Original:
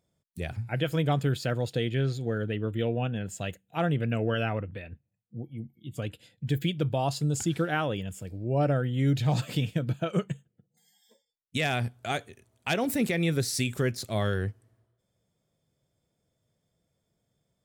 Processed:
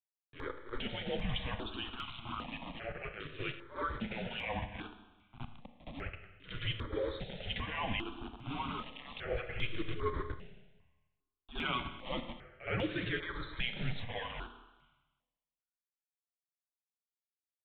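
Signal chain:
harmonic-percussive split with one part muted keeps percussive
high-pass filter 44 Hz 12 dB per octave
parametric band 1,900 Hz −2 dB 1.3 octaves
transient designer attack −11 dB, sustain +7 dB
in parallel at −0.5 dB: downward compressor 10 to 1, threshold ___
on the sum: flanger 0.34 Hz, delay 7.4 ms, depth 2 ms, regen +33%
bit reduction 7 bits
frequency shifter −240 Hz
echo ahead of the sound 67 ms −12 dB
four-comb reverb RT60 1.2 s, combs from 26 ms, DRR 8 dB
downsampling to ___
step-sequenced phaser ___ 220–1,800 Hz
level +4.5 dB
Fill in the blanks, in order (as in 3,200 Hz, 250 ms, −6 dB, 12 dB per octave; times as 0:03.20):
−48 dBFS, 8,000 Hz, 2.5 Hz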